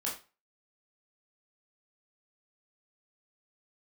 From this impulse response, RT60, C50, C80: 0.30 s, 7.0 dB, 12.5 dB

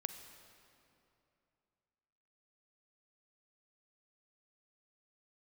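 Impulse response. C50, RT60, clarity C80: 9.0 dB, 2.8 s, 9.5 dB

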